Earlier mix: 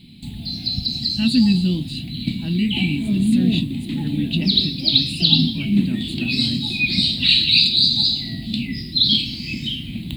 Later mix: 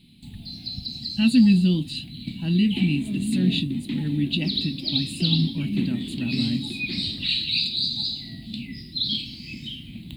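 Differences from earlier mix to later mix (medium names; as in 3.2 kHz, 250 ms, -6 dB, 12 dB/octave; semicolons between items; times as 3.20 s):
first sound -9.5 dB; second sound: add distance through air 83 m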